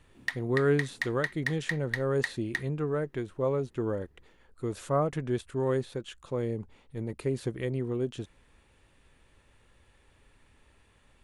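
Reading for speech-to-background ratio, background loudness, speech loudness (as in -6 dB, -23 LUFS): 3.5 dB, -35.5 LUFS, -32.0 LUFS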